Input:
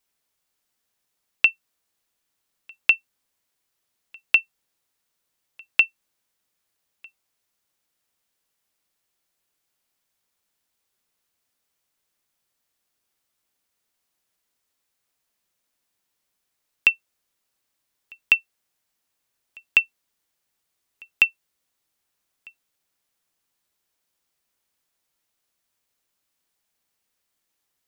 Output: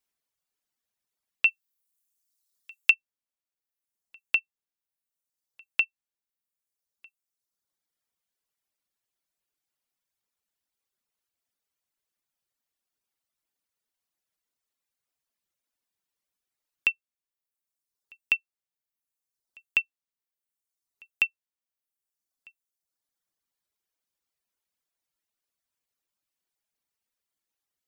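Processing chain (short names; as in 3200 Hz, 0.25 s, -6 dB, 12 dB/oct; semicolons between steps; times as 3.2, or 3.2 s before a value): 1.45–2.91 high shelf 2800 Hz +11 dB; reverb removal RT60 1.4 s; gain -7 dB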